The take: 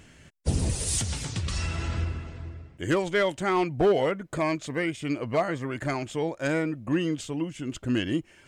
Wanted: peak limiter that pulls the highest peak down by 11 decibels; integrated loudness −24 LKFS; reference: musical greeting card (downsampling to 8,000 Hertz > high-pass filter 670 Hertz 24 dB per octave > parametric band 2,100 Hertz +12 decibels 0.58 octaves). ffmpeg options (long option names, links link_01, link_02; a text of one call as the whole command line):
ffmpeg -i in.wav -af "alimiter=level_in=1dB:limit=-24dB:level=0:latency=1,volume=-1dB,aresample=8000,aresample=44100,highpass=frequency=670:width=0.5412,highpass=frequency=670:width=1.3066,equalizer=frequency=2100:width_type=o:width=0.58:gain=12,volume=11.5dB" out.wav